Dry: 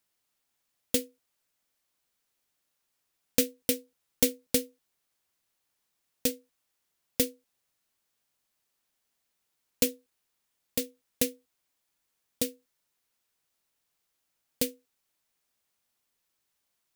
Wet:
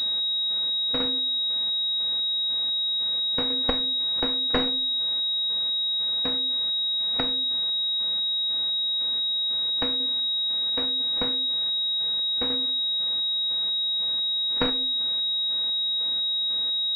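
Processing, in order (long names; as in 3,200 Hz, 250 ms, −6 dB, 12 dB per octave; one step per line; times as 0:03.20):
compressor on every frequency bin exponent 0.4
noise reduction from a noise print of the clip's start 8 dB
in parallel at −2 dB: downward compressor, threshold −38 dBFS, peak gain reduction 20 dB
on the sum: square-wave tremolo 2 Hz, depth 60%, duty 40%
harmonic generator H 4 −11 dB, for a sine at −3 dBFS
on a send at −12.5 dB: convolution reverb RT60 0.70 s, pre-delay 5 ms
on the sum: switching amplifier with a slow clock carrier 3,800 Hz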